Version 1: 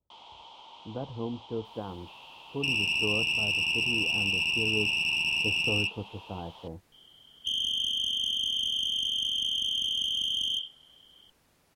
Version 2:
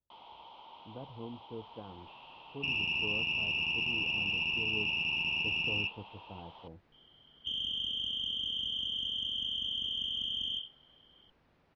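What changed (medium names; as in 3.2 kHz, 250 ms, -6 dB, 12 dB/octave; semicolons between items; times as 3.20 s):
speech -9.0 dB; master: add distance through air 300 m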